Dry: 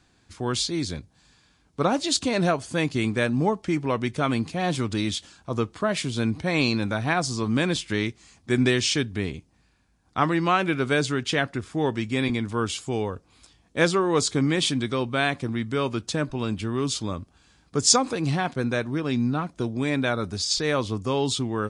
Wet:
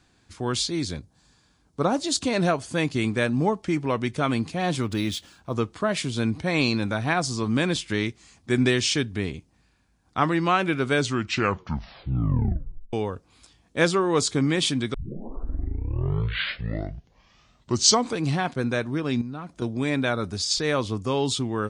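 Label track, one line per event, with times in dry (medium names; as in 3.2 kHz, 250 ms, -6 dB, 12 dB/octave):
0.970000	2.210000	peaking EQ 2.5 kHz -6 dB 1.3 oct
4.820000	5.550000	decimation joined by straight lines rate divided by 3×
10.940000	10.940000	tape stop 1.99 s
14.940000	14.940000	tape start 3.32 s
19.210000	19.620000	compression 3:1, threshold -34 dBFS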